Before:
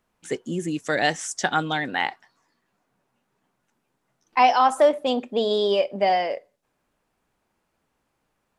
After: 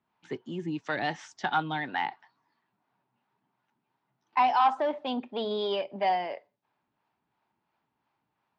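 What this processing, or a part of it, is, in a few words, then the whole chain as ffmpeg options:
guitar amplifier with harmonic tremolo: -filter_complex "[0:a]acrossover=split=420[link_01][link_02];[link_01]aeval=exprs='val(0)*(1-0.5/2+0.5/2*cos(2*PI*2.9*n/s))':channel_layout=same[link_03];[link_02]aeval=exprs='val(0)*(1-0.5/2-0.5/2*cos(2*PI*2.9*n/s))':channel_layout=same[link_04];[link_03][link_04]amix=inputs=2:normalize=0,asoftclip=type=tanh:threshold=-14.5dB,highpass=110,equalizer=frequency=120:width_type=q:width=4:gain=5,equalizer=frequency=510:width_type=q:width=4:gain=-8,equalizer=frequency=900:width_type=q:width=4:gain=8,lowpass=frequency=4400:width=0.5412,lowpass=frequency=4400:width=1.3066,volume=-3.5dB"

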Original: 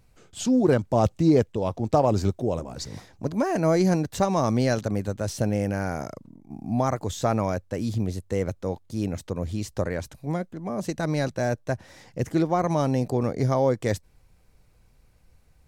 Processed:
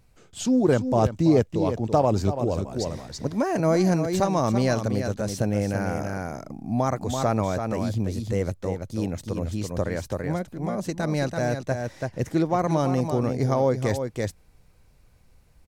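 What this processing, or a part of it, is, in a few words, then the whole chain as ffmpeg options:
ducked delay: -filter_complex "[0:a]asplit=3[link_01][link_02][link_03];[link_02]adelay=334,volume=-2.5dB[link_04];[link_03]apad=whole_len=705780[link_05];[link_04][link_05]sidechaincompress=threshold=-26dB:ratio=4:attack=5.1:release=317[link_06];[link_01][link_06]amix=inputs=2:normalize=0"

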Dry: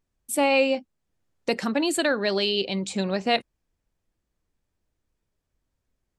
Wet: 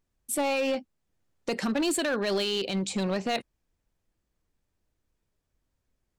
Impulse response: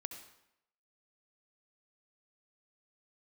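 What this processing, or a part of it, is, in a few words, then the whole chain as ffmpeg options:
limiter into clipper: -af "alimiter=limit=-17.5dB:level=0:latency=1:release=30,asoftclip=type=hard:threshold=-22.5dB"

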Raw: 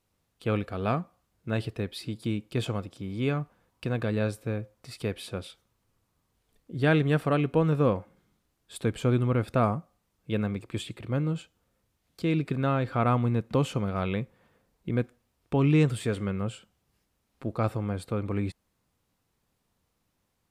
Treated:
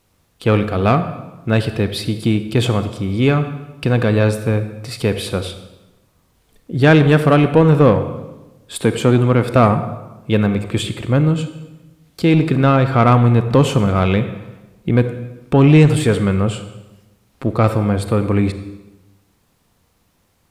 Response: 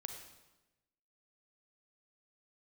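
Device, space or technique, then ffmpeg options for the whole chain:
saturated reverb return: -filter_complex "[0:a]asplit=2[link_01][link_02];[1:a]atrim=start_sample=2205[link_03];[link_02][link_03]afir=irnorm=-1:irlink=0,asoftclip=type=tanh:threshold=-24.5dB,volume=5dB[link_04];[link_01][link_04]amix=inputs=2:normalize=0,asettb=1/sr,asplit=3[link_05][link_06][link_07];[link_05]atrim=end=8.834[link_08];[link_06]atrim=start=8.83:end=9.56,asetpts=PTS-STARTPTS,afade=type=in:duration=0.004:curve=qsin,afade=type=out:start_time=0.726:duration=0.004:curve=qsin,highpass=130[link_09];[link_07]atrim=start=9.556[link_10];[link_08][link_09]acrossfade=duration=0.004:curve1=hsin:curve2=qsin[link_11];[link_11][link_10]acrossfade=duration=0.004:curve1=qsin:curve2=hsin,volume=7.5dB"

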